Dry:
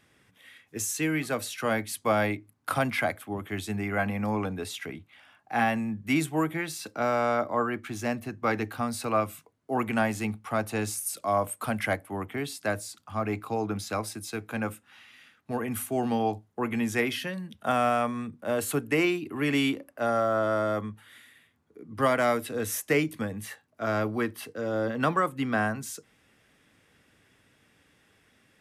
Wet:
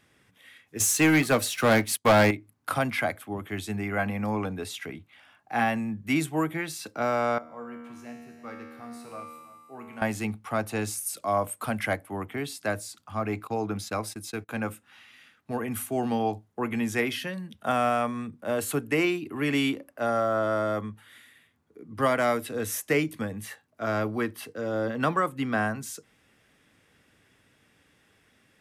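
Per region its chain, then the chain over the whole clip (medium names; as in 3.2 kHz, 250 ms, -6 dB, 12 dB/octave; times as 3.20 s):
0.80–2.31 s: waveshaping leveller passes 3 + upward expansion, over -37 dBFS
7.38–10.02 s: feedback comb 79 Hz, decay 1.7 s, mix 90% + delay 330 ms -15.5 dB
13.47–14.49 s: gate -42 dBFS, range -21 dB + upward compressor, threshold -48 dBFS
whole clip: none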